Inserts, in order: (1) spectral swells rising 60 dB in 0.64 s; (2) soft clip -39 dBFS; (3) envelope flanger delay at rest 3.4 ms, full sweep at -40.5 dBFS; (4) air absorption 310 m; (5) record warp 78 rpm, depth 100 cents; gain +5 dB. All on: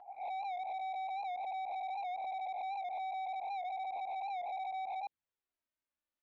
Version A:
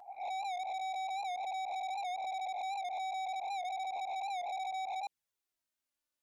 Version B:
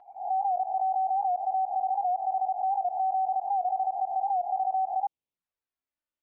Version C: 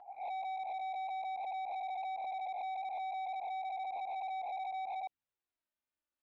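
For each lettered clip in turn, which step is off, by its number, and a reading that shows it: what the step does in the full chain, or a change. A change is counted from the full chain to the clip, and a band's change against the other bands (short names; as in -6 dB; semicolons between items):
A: 4, 4 kHz band +7.5 dB; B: 2, distortion -6 dB; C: 5, 500 Hz band -1.5 dB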